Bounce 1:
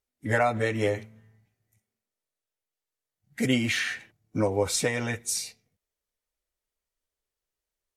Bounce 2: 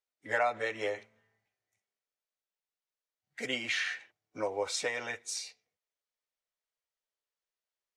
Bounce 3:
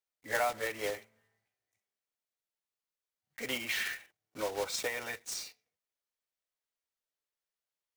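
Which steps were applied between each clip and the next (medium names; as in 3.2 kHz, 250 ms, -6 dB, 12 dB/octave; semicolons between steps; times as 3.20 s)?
three-band isolator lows -20 dB, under 420 Hz, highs -19 dB, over 7.4 kHz; trim -4 dB
block-companded coder 3-bit; trim -2 dB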